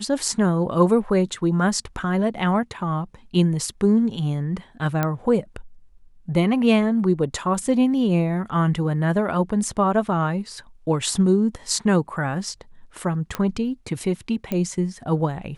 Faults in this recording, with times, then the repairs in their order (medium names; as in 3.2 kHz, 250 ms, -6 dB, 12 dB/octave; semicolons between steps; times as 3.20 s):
5.03 s: pop -9 dBFS
13.35 s: pop -11 dBFS
14.52 s: pop -13 dBFS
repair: de-click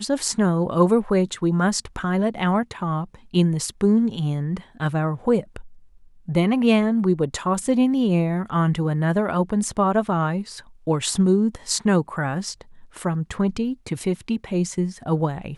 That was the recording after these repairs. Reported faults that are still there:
nothing left